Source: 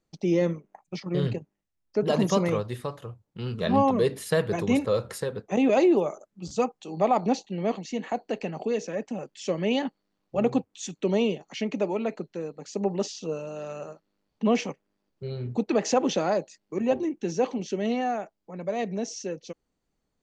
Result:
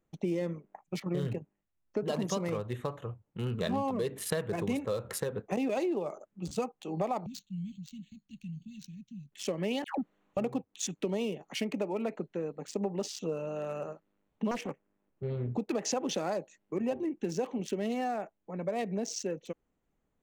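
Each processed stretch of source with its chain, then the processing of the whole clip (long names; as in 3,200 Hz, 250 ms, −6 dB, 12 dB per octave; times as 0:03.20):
0:07.26–0:09.32: inverse Chebyshev band-stop filter 430–1,500 Hz, stop band 60 dB + linearly interpolated sample-rate reduction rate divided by 4×
0:09.84–0:10.37: low-shelf EQ 230 Hz +8.5 dB + all-pass dispersion lows, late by 148 ms, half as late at 980 Hz + mid-hump overdrive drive 15 dB, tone 6,200 Hz, clips at −19.5 dBFS
0:14.51–0:15.48: parametric band 4,500 Hz −5.5 dB 1.1 octaves + highs frequency-modulated by the lows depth 0.82 ms
whole clip: adaptive Wiener filter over 9 samples; high-shelf EQ 5,000 Hz +9 dB; downward compressor, threshold −29 dBFS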